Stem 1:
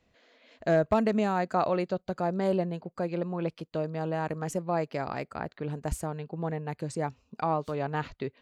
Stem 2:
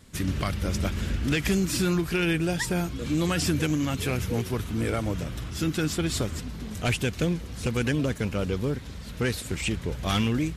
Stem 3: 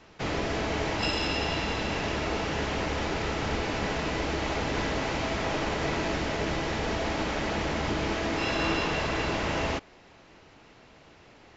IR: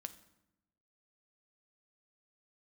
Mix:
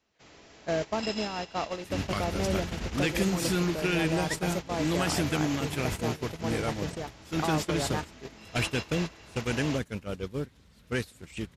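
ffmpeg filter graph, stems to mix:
-filter_complex "[0:a]acompressor=threshold=-35dB:ratio=2,volume=3dB[a];[1:a]adelay=1700,volume=-2.5dB[b];[2:a]aemphasis=mode=production:type=75kf,volume=-10dB[c];[a][b][c]amix=inputs=3:normalize=0,agate=range=-15dB:threshold=-28dB:ratio=16:detection=peak,lowshelf=f=96:g=-5"

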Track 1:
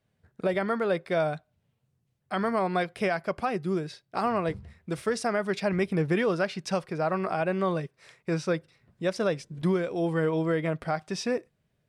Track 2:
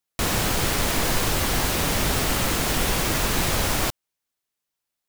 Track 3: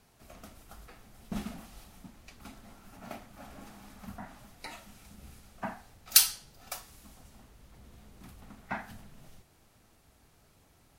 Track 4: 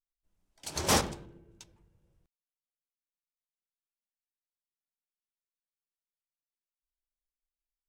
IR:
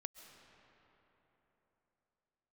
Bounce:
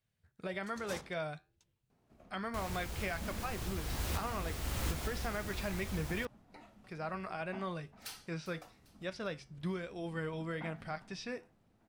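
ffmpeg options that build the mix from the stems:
-filter_complex "[0:a]acrossover=split=4700[a][b];[b]acompressor=threshold=-59dB:ratio=4:attack=1:release=60[c];[a][c]amix=inputs=2:normalize=0,equalizer=f=410:w=0.33:g=-11,flanger=delay=9:depth=2.5:regen=-77:speed=1.1:shape=triangular,volume=0.5dB,asplit=3[d][e][f];[d]atrim=end=6.27,asetpts=PTS-STARTPTS,afade=t=out:st=6.266:d=0.004:c=hsin[g];[e]atrim=start=6.27:end=6.84,asetpts=PTS-STARTPTS,volume=0[h];[f]atrim=start=6.84,asetpts=PTS-STARTPTS,afade=t=in:d=0.004:c=hsin[i];[g][h][i]concat=n=3:v=0:a=1,asplit=2[j][k];[1:a]equalizer=f=66:w=1.2:g=14,adelay=2350,volume=-13dB[l];[2:a]lowpass=f=2.8k:p=1,equalizer=f=250:w=0.34:g=9.5,asoftclip=type=tanh:threshold=-25dB,adelay=1900,volume=-14dB,asplit=2[m][n];[n]volume=-16.5dB[o];[3:a]agate=range=-33dB:threshold=-59dB:ratio=3:detection=peak,volume=-20dB[p];[k]apad=whole_len=327867[q];[l][q]sidechaincompress=threshold=-44dB:ratio=6:attack=6.2:release=704[r];[o]aecho=0:1:399|798|1197|1596|1995|2394:1|0.45|0.202|0.0911|0.041|0.0185[s];[j][r][m][p][s]amix=inputs=5:normalize=0"

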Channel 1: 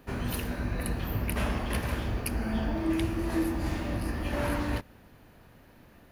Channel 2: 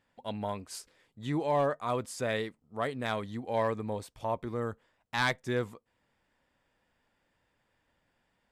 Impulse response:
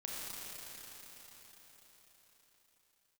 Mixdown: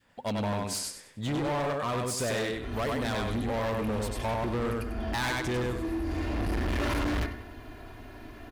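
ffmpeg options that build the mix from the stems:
-filter_complex "[0:a]highshelf=f=7.1k:g=-11,aecho=1:1:2.9:0.91,bandreject=f=69.74:t=h:w=4,bandreject=f=139.48:t=h:w=4,bandreject=f=209.22:t=h:w=4,bandreject=f=278.96:t=h:w=4,bandreject=f=348.7:t=h:w=4,bandreject=f=418.44:t=h:w=4,bandreject=f=488.18:t=h:w=4,bandreject=f=557.92:t=h:w=4,bandreject=f=627.66:t=h:w=4,bandreject=f=697.4:t=h:w=4,bandreject=f=767.14:t=h:w=4,bandreject=f=836.88:t=h:w=4,bandreject=f=906.62:t=h:w=4,bandreject=f=976.36:t=h:w=4,bandreject=f=1.0461k:t=h:w=4,bandreject=f=1.11584k:t=h:w=4,bandreject=f=1.18558k:t=h:w=4,bandreject=f=1.25532k:t=h:w=4,bandreject=f=1.32506k:t=h:w=4,bandreject=f=1.3948k:t=h:w=4,bandreject=f=1.46454k:t=h:w=4,bandreject=f=1.53428k:t=h:w=4,bandreject=f=1.60402k:t=h:w=4,bandreject=f=1.67376k:t=h:w=4,bandreject=f=1.7435k:t=h:w=4,bandreject=f=1.81324k:t=h:w=4,bandreject=f=1.88298k:t=h:w=4,bandreject=f=1.95272k:t=h:w=4,bandreject=f=2.02246k:t=h:w=4,bandreject=f=2.0922k:t=h:w=4,bandreject=f=2.16194k:t=h:w=4,adelay=2450,volume=1dB,asplit=2[a][b];[b]volume=-18.5dB[c];[1:a]acompressor=threshold=-32dB:ratio=4,volume=2dB,asplit=3[d][e][f];[e]volume=-3dB[g];[f]apad=whole_len=377630[h];[a][h]sidechaincompress=threshold=-53dB:ratio=12:attack=11:release=635[i];[c][g]amix=inputs=2:normalize=0,aecho=0:1:97|194|291|388:1|0.3|0.09|0.027[j];[i][d][j]amix=inputs=3:normalize=0,adynamicequalizer=threshold=0.00794:dfrequency=740:dqfactor=0.85:tfrequency=740:tqfactor=0.85:attack=5:release=100:ratio=0.375:range=2:mode=cutabove:tftype=bell,acontrast=88,volume=27dB,asoftclip=hard,volume=-27dB"

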